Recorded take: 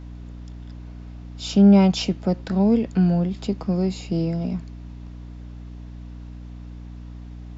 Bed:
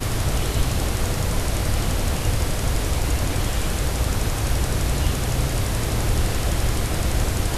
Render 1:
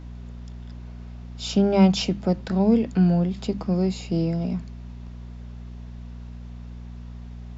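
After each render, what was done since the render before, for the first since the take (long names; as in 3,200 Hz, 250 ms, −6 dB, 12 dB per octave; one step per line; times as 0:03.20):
mains-hum notches 50/100/150/200/250/300 Hz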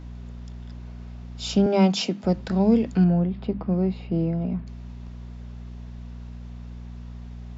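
0:01.66–0:02.24: high-pass filter 190 Hz 24 dB per octave
0:03.04–0:04.67: high-frequency loss of the air 400 metres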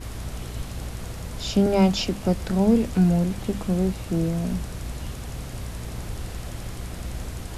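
mix in bed −13 dB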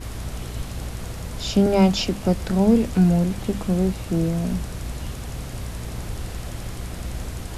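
level +2 dB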